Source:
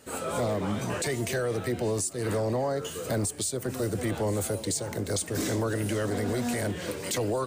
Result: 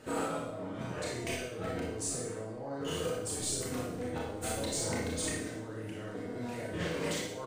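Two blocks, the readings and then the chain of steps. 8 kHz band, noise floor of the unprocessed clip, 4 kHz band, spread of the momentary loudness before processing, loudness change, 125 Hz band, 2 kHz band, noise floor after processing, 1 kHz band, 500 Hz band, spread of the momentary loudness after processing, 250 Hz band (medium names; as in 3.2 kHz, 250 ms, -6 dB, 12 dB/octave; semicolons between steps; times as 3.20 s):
-4.5 dB, -39 dBFS, -3.5 dB, 3 LU, -6.5 dB, -9.5 dB, -5.0 dB, -42 dBFS, -5.5 dB, -7.5 dB, 7 LU, -7.0 dB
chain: low-pass 2.3 kHz 6 dB/octave; comb 6.4 ms, depth 33%; compressor with a negative ratio -38 dBFS, ratio -1; overload inside the chain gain 24 dB; flutter echo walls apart 10.4 m, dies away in 0.41 s; Schroeder reverb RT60 0.65 s, combs from 25 ms, DRR -3.5 dB; trim -5 dB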